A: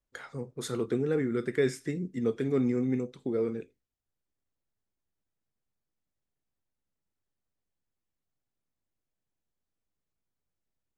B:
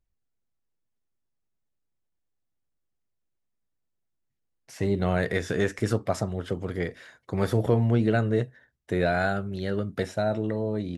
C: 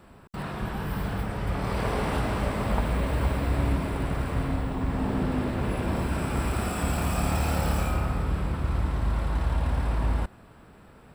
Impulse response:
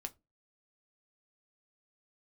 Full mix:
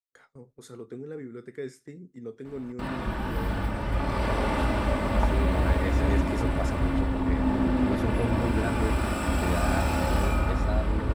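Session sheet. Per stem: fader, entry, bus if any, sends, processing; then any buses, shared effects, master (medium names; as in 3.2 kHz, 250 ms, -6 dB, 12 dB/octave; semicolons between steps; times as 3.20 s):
-13.0 dB, 0.00 s, send -5 dB, peaking EQ 2.9 kHz -4.5 dB 1 oct
-8.0 dB, 0.50 s, no send, none
-2.0 dB, 2.45 s, send -4.5 dB, treble shelf 8.4 kHz -8.5 dB; comb 3.4 ms, depth 46%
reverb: on, pre-delay 4 ms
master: gate with hold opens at -43 dBFS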